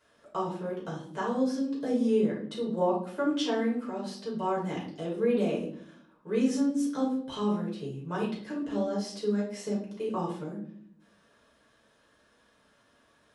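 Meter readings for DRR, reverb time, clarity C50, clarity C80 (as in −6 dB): −6.0 dB, 0.60 s, 5.0 dB, 11.0 dB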